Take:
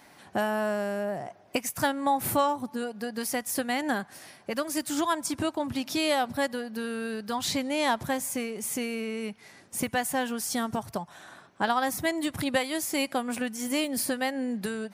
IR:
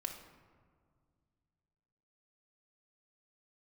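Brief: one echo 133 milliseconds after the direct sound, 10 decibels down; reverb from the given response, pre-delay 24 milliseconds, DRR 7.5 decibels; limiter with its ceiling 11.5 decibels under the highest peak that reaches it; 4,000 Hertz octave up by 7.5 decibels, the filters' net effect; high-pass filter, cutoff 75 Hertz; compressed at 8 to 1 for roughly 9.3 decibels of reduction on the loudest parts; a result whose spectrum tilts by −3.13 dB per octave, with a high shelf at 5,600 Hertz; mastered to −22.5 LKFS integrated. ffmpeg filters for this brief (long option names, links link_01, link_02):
-filter_complex "[0:a]highpass=75,equalizer=frequency=4000:width_type=o:gain=8,highshelf=frequency=5600:gain=4,acompressor=threshold=-29dB:ratio=8,alimiter=level_in=3dB:limit=-24dB:level=0:latency=1,volume=-3dB,aecho=1:1:133:0.316,asplit=2[link_01][link_02];[1:a]atrim=start_sample=2205,adelay=24[link_03];[link_02][link_03]afir=irnorm=-1:irlink=0,volume=-7dB[link_04];[link_01][link_04]amix=inputs=2:normalize=0,volume=13dB"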